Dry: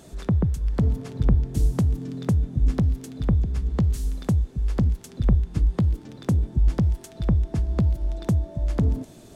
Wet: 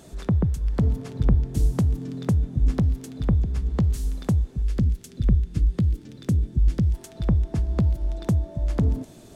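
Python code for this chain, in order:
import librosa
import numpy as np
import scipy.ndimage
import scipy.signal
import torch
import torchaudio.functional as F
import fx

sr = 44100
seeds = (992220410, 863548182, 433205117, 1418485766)

y = fx.peak_eq(x, sr, hz=870.0, db=-11.5, octaves=1.3, at=(4.62, 6.94))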